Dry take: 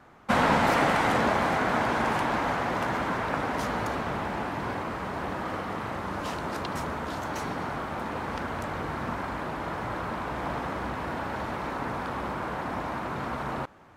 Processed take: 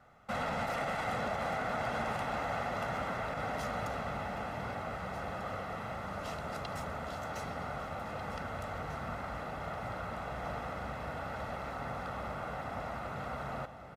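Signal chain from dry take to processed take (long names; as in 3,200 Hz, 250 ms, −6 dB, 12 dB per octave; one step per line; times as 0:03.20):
comb filter 1.5 ms, depth 59%
brickwall limiter −17.5 dBFS, peak gain reduction 8.5 dB
delay that swaps between a low-pass and a high-pass 772 ms, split 910 Hz, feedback 73%, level −10 dB
level −8.5 dB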